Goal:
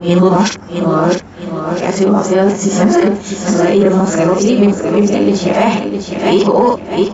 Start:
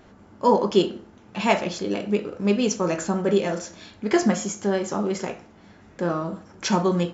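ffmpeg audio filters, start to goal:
ffmpeg -i in.wav -filter_complex "[0:a]areverse,asplit=2[link_01][link_02];[link_02]asoftclip=type=hard:threshold=-15.5dB,volume=-5.5dB[link_03];[link_01][link_03]amix=inputs=2:normalize=0,asplit=2[link_04][link_05];[link_05]adelay=49,volume=-8dB[link_06];[link_04][link_06]amix=inputs=2:normalize=0,asplit=2[link_07][link_08];[link_08]aecho=0:1:655|1310|1965|2620:0.355|0.128|0.046|0.0166[link_09];[link_07][link_09]amix=inputs=2:normalize=0,alimiter=level_in=12dB:limit=-1dB:release=50:level=0:latency=1,adynamicequalizer=threshold=0.0398:dfrequency=1600:dqfactor=0.7:tfrequency=1600:tqfactor=0.7:attack=5:release=100:ratio=0.375:range=3:mode=cutabove:tftype=highshelf,volume=-1dB" out.wav

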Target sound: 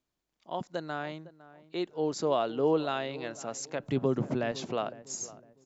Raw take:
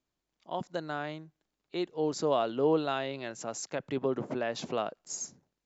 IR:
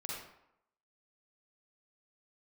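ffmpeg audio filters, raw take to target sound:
-filter_complex "[0:a]asettb=1/sr,asplit=3[link_01][link_02][link_03];[link_01]atrim=end=3.824[link_04];[link_02]atrim=start=3.82:end=4.52,asetpts=PTS-STARTPTS,afade=type=in:duration=0.004:curve=qsin,afade=type=out:start_time=0.696:duration=0.004:curve=qsin,bass=frequency=250:gain=10,treble=frequency=4000:gain=5[link_05];[link_03]atrim=start=4.516[link_06];[link_04][link_05]acrossfade=duration=0.004:curve1=hsin:curve2=qsin[link_07];[link_07][link_06]acrossfade=duration=0.004:curve1=qsin:curve2=hsin,asplit=2[link_08][link_09];[link_09]adelay=507,lowpass=frequency=1300:poles=1,volume=-17dB,asplit=2[link_10][link_11];[link_11]adelay=507,lowpass=frequency=1300:poles=1,volume=0.33,asplit=2[link_12][link_13];[link_13]adelay=507,lowpass=frequency=1300:poles=1,volume=0.33[link_14];[link_08][link_10][link_12][link_14]amix=inputs=4:normalize=0"

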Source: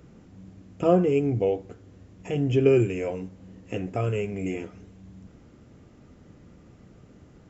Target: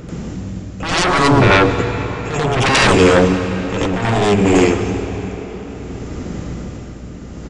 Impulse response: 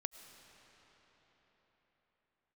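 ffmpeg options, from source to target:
-filter_complex "[0:a]aeval=exprs='0.447*(cos(1*acos(clip(val(0)/0.447,-1,1)))-cos(1*PI/2))+0.0398*(cos(4*acos(clip(val(0)/0.447,-1,1)))-cos(4*PI/2))':channel_layout=same,aeval=exprs='0.422*sin(PI/2*8.91*val(0)/0.422)':channel_layout=same,aeval=exprs='val(0)+0.0282*(sin(2*PI*60*n/s)+sin(2*PI*2*60*n/s)/2+sin(2*PI*3*60*n/s)/3+sin(2*PI*4*60*n/s)/4+sin(2*PI*5*60*n/s)/5)':channel_layout=same,tremolo=f=0.64:d=0.6,asplit=2[link_01][link_02];[1:a]atrim=start_sample=2205,highshelf=frequency=5500:gain=9,adelay=88[link_03];[link_02][link_03]afir=irnorm=-1:irlink=0,volume=7dB[link_04];[link_01][link_04]amix=inputs=2:normalize=0,aresample=22050,aresample=44100,volume=-4.5dB"

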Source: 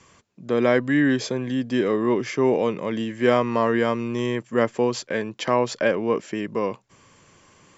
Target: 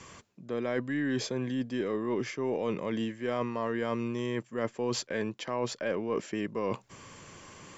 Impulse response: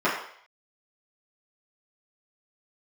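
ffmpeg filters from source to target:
-af "areverse,acompressor=threshold=-34dB:ratio=6,areverse,aeval=exprs='0.0794*(cos(1*acos(clip(val(0)/0.0794,-1,1)))-cos(1*PI/2))+0.000562*(cos(8*acos(clip(val(0)/0.0794,-1,1)))-cos(8*PI/2))':channel_layout=same,volume=4.5dB"

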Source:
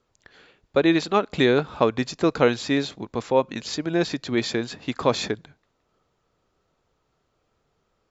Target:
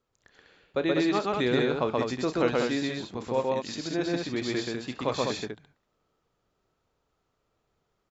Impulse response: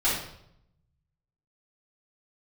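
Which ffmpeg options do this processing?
-af "aecho=1:1:32.07|128.3|198.3:0.251|0.891|0.631,volume=-8.5dB"

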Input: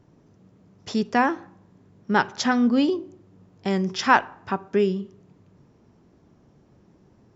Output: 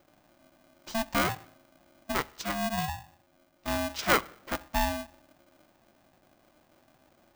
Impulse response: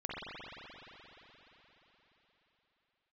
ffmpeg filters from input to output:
-filter_complex "[0:a]asettb=1/sr,asplit=3[link_01][link_02][link_03];[link_01]atrim=end=2.124[link_04];[link_02]atrim=start=2.12:end=3.68,asetpts=PTS-STARTPTS,afade=type=in:duration=0.004:curve=qsin,afade=type=out:start_time=1.556:duration=0.004:curve=qsin,aeval=exprs='0.501*(cos(1*acos(clip(val(0)/0.501,-1,1)))-cos(1*PI/2))+0.0794*(cos(3*acos(clip(val(0)/0.501,-1,1)))-cos(3*PI/2))':channel_layout=same[link_05];[link_03]atrim=start=3.676[link_06];[link_04][link_05]acrossfade=duration=0.004:curve1=hsin:curve2=qsin[link_07];[link_07][link_06]acrossfade=duration=0.004:curve1=qsin:curve2=hsin,aeval=exprs='val(0)*sgn(sin(2*PI*450*n/s))':channel_layout=same,volume=-7dB"

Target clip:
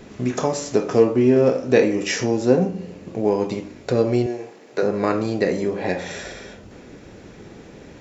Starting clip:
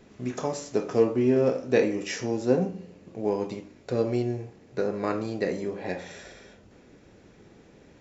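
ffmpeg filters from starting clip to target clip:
ffmpeg -i in.wav -filter_complex "[0:a]asettb=1/sr,asplit=3[link_01][link_02][link_03];[link_01]atrim=end=4.264[link_04];[link_02]atrim=start=4.26:end=4.83,asetpts=PTS-STARTPTS,afade=type=in:duration=0.004:curve=qsin,afade=type=out:start_time=0.566:duration=0.004:curve=qsin,highpass=390[link_05];[link_03]atrim=start=4.826[link_06];[link_04][link_05]acrossfade=duration=0.004:curve1=hsin:curve2=qsin[link_07];[link_07][link_06]acrossfade=duration=0.004:curve1=qsin:curve2=hsin,asplit=2[link_08][link_09];[link_09]acompressor=threshold=-34dB:ratio=6,volume=2dB[link_10];[link_08][link_10]amix=inputs=2:normalize=0,volume=4.5dB" out.wav

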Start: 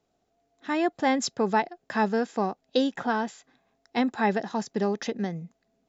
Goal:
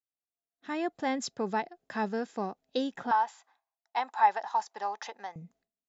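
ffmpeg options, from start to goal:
ffmpeg -i in.wav -filter_complex "[0:a]agate=range=-33dB:threshold=-56dB:ratio=3:detection=peak,asettb=1/sr,asplit=3[link_01][link_02][link_03];[link_01]atrim=end=3.114[link_04];[link_02]atrim=start=3.11:end=5.36,asetpts=PTS-STARTPTS,afade=type=in:duration=0.004:curve=qsin,afade=type=out:start_time=2.246:duration=0.004:curve=qsin,highpass=frequency=890:width_type=q:width=4.9[link_05];[link_03]atrim=start=5.356[link_06];[link_04][link_05]acrossfade=duration=0.004:curve1=hsin:curve2=qsin[link_07];[link_07][link_06]acrossfade=duration=0.004:curve1=qsin:curve2=hsin,volume=-7dB" out.wav

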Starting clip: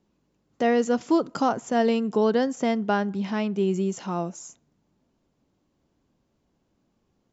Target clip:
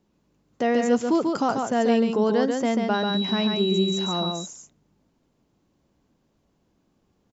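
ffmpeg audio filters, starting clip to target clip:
ffmpeg -i in.wav -filter_complex "[0:a]asplit=2[link_01][link_02];[link_02]alimiter=limit=-20.5dB:level=0:latency=1,volume=-2dB[link_03];[link_01][link_03]amix=inputs=2:normalize=0,asettb=1/sr,asplit=3[link_04][link_05][link_06];[link_04]atrim=end=2.944[link_07];[link_05]atrim=start=2.94:end=4.32,asetpts=PTS-STARTPTS,afade=type=in:duration=0.004:curve=qsin,afade=type=out:start_time=1.376:duration=0.004:curve=qsin,aeval=exprs='val(0)+0.0355*sin(2*PI*3900*n/s)':channel_layout=same[link_08];[link_06]atrim=start=4.316[link_09];[link_07][link_08]acrossfade=duration=0.004:curve1=hsin:curve2=qsin[link_10];[link_10][link_09]acrossfade=duration=0.004:curve1=qsin:curve2=hsin,aecho=1:1:140:0.631,volume=-3.5dB" out.wav

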